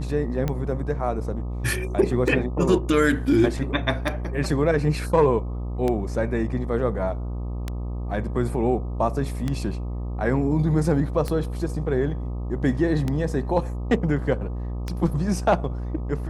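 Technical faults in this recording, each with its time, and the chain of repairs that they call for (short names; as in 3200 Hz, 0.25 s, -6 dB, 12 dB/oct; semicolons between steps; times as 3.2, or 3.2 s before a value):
buzz 60 Hz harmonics 21 -29 dBFS
tick 33 1/3 rpm -13 dBFS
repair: de-click; de-hum 60 Hz, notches 21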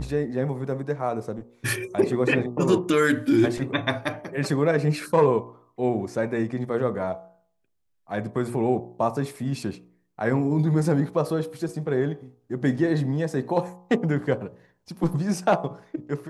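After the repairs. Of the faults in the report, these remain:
none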